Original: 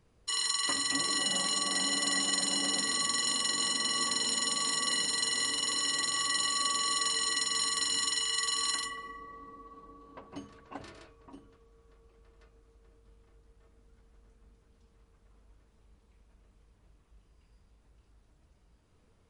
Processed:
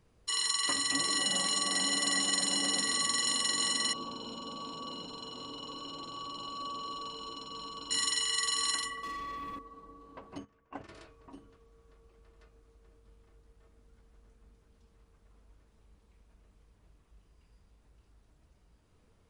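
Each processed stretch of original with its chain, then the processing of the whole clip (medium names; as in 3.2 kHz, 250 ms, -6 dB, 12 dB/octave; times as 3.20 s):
3.93–7.91 s: Butterworth band-stop 1.9 kHz, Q 2.2 + tape spacing loss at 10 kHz 35 dB
9.03–9.59 s: de-hum 45.71 Hz, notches 22 + waveshaping leveller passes 3
10.38–10.89 s: low-pass 6 kHz + gate -48 dBFS, range -14 dB + peaking EQ 4.1 kHz -11 dB 0.48 oct
whole clip: none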